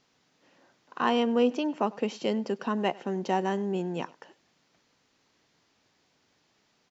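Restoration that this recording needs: inverse comb 98 ms -22.5 dB

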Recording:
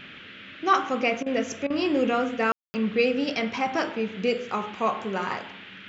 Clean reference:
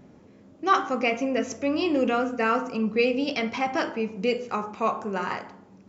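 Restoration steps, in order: room tone fill 2.52–2.74 s; interpolate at 1.23/1.67 s, 31 ms; noise print and reduce 7 dB

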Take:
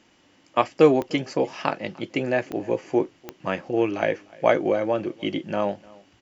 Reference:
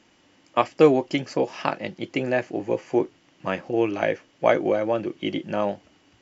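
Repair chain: de-click; inverse comb 300 ms -24 dB

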